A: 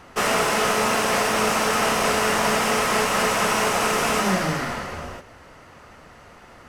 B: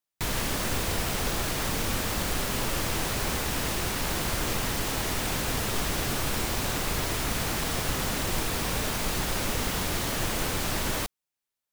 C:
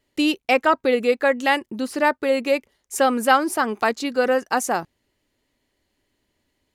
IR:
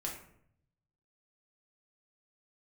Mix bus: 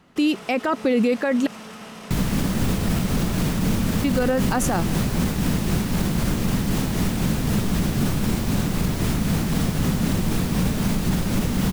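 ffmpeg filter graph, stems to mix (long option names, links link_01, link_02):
-filter_complex "[0:a]equalizer=frequency=3500:width_type=o:width=0.77:gain=6,alimiter=limit=-19dB:level=0:latency=1,volume=-13.5dB[link_01];[1:a]lowshelf=frequency=310:gain=8,tremolo=f=3.9:d=0.38,adelay=1900,volume=0.5dB[link_02];[2:a]volume=2dB,asplit=3[link_03][link_04][link_05];[link_03]atrim=end=1.47,asetpts=PTS-STARTPTS,afade=type=out:start_time=1.466:duration=0.004:curve=hsin[link_06];[link_04]atrim=start=1.47:end=4.04,asetpts=PTS-STARTPTS,volume=0[link_07];[link_05]atrim=start=4.04,asetpts=PTS-STARTPTS,afade=type=in:duration=0.004:curve=hsin[link_08];[link_06][link_07][link_08]concat=n=3:v=0:a=1[link_09];[link_01][link_02][link_09]amix=inputs=3:normalize=0,equalizer=frequency=190:width_type=o:width=1.1:gain=13,alimiter=limit=-12dB:level=0:latency=1:release=35"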